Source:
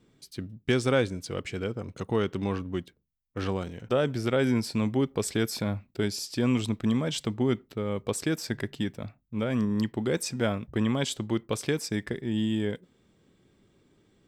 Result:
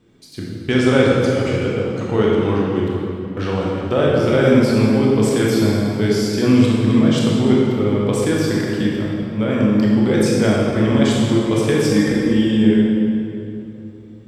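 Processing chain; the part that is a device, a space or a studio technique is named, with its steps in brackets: 11.79–12.48 comb 3.8 ms, depth 94%; swimming-pool hall (reverb RT60 2.8 s, pre-delay 19 ms, DRR -4.5 dB; high shelf 5400 Hz -6 dB); gain +5.5 dB

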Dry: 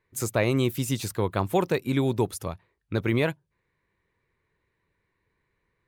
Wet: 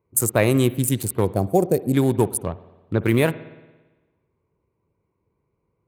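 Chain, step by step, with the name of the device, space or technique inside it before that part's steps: Wiener smoothing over 25 samples; budget condenser microphone (HPF 64 Hz; resonant high shelf 7300 Hz +11 dB, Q 1.5); 1.25–1.93 spectral gain 790–4200 Hz -15 dB; spring tank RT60 1.2 s, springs 56 ms, chirp 35 ms, DRR 16.5 dB; 2.37–3.02 treble ducked by the level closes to 2500 Hz, closed at -28 dBFS; gain +6 dB

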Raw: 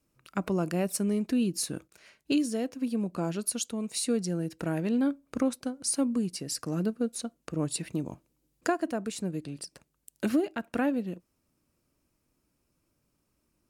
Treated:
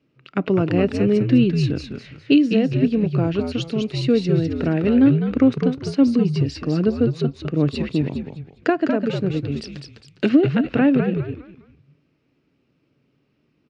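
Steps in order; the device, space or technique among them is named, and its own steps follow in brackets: frequency-shifting delay pedal into a guitar cabinet (frequency-shifting echo 0.204 s, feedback 34%, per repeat -83 Hz, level -5 dB; speaker cabinet 93–4200 Hz, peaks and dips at 140 Hz +9 dB, 270 Hz +6 dB, 420 Hz +7 dB, 980 Hz -5 dB, 2000 Hz +3 dB, 2800 Hz +5 dB); 9.56–10.29 high shelf 3700 Hz +11 dB; gain +6.5 dB

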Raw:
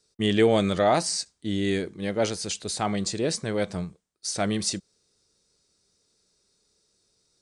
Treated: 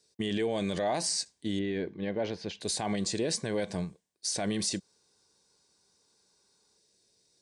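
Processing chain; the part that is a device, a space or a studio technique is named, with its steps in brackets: PA system with an anti-feedback notch (HPF 130 Hz 6 dB/oct; Butterworth band-stop 1300 Hz, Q 5.1; limiter -21 dBFS, peak gain reduction 11 dB); 1.59–2.61 air absorption 280 m; 4.81–6.77 spectral gain 750–1600 Hz +8 dB

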